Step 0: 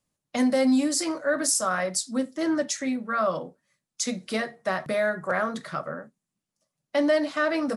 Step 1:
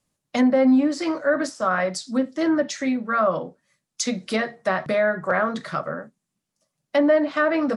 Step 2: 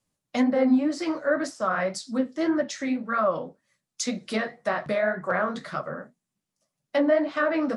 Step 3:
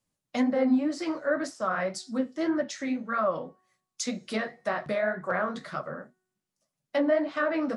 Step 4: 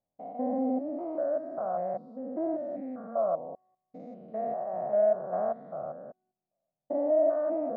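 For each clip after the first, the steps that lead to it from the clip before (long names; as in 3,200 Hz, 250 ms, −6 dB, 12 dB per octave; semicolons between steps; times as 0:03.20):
treble cut that deepens with the level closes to 1,800 Hz, closed at −19.5 dBFS; level +4.5 dB
flanger 1.9 Hz, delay 7.5 ms, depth 9.7 ms, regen −37%
tuned comb filter 370 Hz, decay 0.87 s, mix 30%
spectrum averaged block by block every 200 ms; low-pass with resonance 700 Hz, resonance Q 6.7; level −6.5 dB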